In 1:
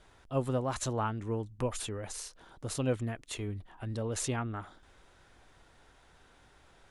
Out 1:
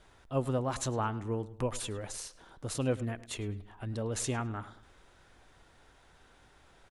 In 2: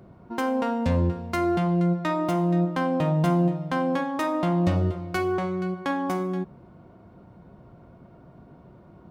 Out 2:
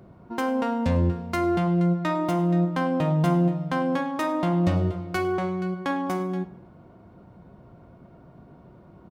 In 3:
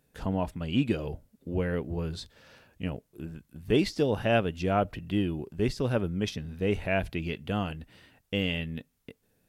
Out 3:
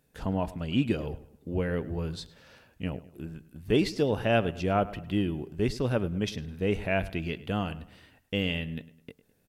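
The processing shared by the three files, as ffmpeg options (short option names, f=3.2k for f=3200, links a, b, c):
-filter_complex "[0:a]asplit=2[a][b];[b]adelay=104,lowpass=f=3.8k:p=1,volume=-17dB,asplit=2[c][d];[d]adelay=104,lowpass=f=3.8k:p=1,volume=0.42,asplit=2[e][f];[f]adelay=104,lowpass=f=3.8k:p=1,volume=0.42,asplit=2[g][h];[h]adelay=104,lowpass=f=3.8k:p=1,volume=0.42[i];[a][c][e][g][i]amix=inputs=5:normalize=0"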